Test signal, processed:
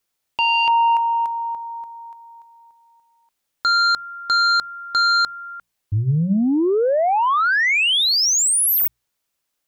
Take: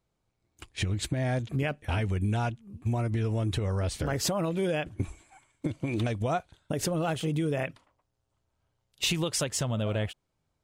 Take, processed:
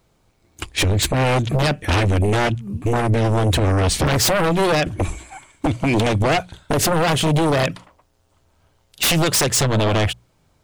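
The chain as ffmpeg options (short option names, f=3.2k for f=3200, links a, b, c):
-af "aeval=exprs='0.168*sin(PI/2*3.98*val(0)/0.168)':c=same,bandreject=f=60:t=h:w=6,bandreject=f=120:t=h:w=6,bandreject=f=180:t=h:w=6,volume=2dB"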